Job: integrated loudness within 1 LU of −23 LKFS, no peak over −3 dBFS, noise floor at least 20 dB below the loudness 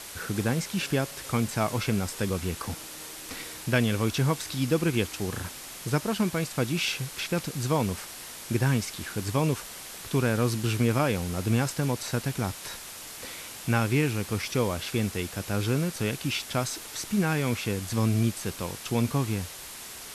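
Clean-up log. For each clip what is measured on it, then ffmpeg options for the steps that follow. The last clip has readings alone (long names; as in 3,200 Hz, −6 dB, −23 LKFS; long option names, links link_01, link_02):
background noise floor −42 dBFS; target noise floor −49 dBFS; integrated loudness −28.5 LKFS; sample peak −10.5 dBFS; target loudness −23.0 LKFS
→ -af "afftdn=noise_reduction=7:noise_floor=-42"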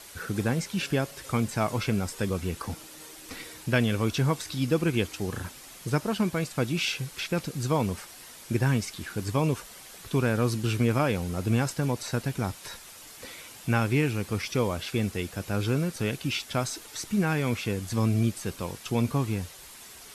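background noise floor −47 dBFS; target noise floor −49 dBFS
→ -af "afftdn=noise_reduction=6:noise_floor=-47"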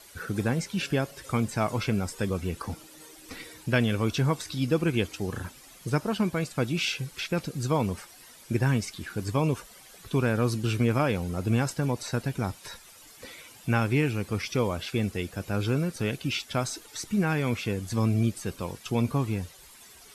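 background noise floor −51 dBFS; integrated loudness −28.5 LKFS; sample peak −11.0 dBFS; target loudness −23.0 LKFS
→ -af "volume=5.5dB"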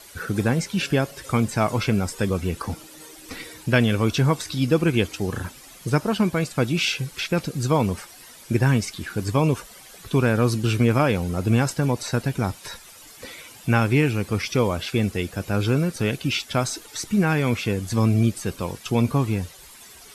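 integrated loudness −23.0 LKFS; sample peak −5.5 dBFS; background noise floor −46 dBFS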